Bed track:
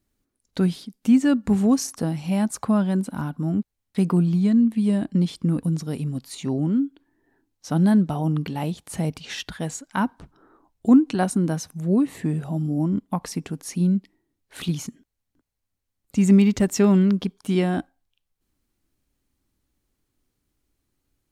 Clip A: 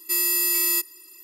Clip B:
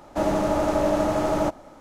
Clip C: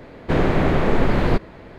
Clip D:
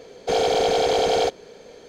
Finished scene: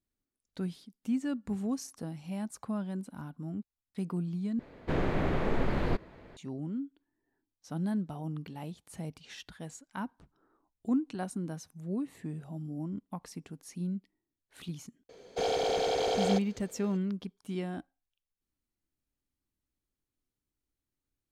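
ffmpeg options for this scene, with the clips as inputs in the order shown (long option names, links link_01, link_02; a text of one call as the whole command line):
ffmpeg -i bed.wav -i cue0.wav -i cue1.wav -i cue2.wav -i cue3.wav -filter_complex "[0:a]volume=-14.5dB,asplit=2[link_01][link_02];[link_01]atrim=end=4.594[link_03];[3:a]atrim=end=1.78,asetpts=PTS-STARTPTS,volume=-11.5dB[link_04];[link_02]atrim=start=6.366[link_05];[4:a]atrim=end=1.88,asetpts=PTS-STARTPTS,volume=-9.5dB,afade=type=in:duration=0.004:curve=hsin,afade=type=out:start_time=1.876:duration=0.004:curve=hsin,adelay=15090[link_06];[link_03][link_04]acrossfade=duration=0.004:curve1=hsin:curve2=hsin[link_07];[link_07][link_05]acrossfade=duration=0.004:curve1=hsin:curve2=hsin[link_08];[link_08][link_06]amix=inputs=2:normalize=0" out.wav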